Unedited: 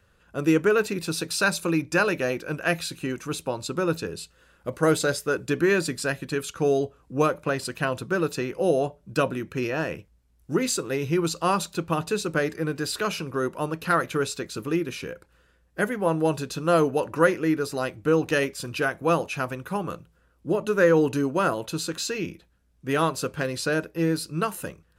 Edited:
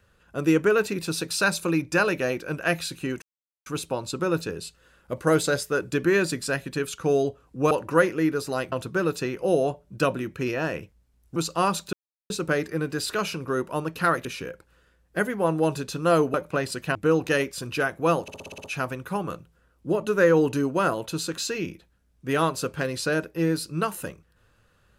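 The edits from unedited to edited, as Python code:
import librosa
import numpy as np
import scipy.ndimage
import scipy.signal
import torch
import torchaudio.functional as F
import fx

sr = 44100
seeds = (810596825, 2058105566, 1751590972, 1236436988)

y = fx.edit(x, sr, fx.insert_silence(at_s=3.22, length_s=0.44),
    fx.swap(start_s=7.27, length_s=0.61, other_s=16.96, other_length_s=1.01),
    fx.cut(start_s=10.52, length_s=0.7),
    fx.silence(start_s=11.79, length_s=0.37),
    fx.cut(start_s=14.11, length_s=0.76),
    fx.stutter(start_s=19.24, slice_s=0.06, count=8), tone=tone)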